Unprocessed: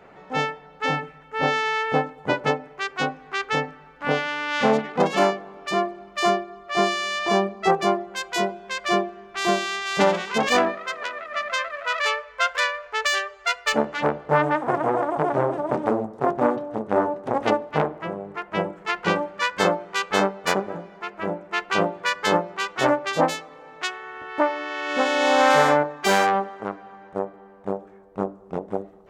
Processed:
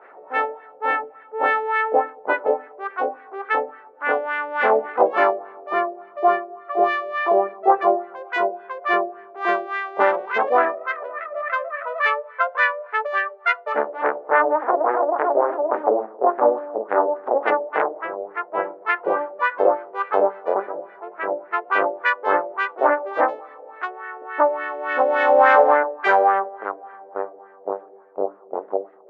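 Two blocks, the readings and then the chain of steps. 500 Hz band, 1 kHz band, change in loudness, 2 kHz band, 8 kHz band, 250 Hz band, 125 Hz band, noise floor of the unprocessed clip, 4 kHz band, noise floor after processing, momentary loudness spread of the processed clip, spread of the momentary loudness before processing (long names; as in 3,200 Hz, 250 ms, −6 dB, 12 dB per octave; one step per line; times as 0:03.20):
+3.0 dB, +3.5 dB, +2.5 dB, +2.0 dB, below −25 dB, −6.0 dB, below −20 dB, −48 dBFS, −12.5 dB, −46 dBFS, 13 LU, 11 LU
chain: high-pass filter 350 Hz 24 dB per octave
auto-filter low-pass sine 3.5 Hz 560–1,900 Hz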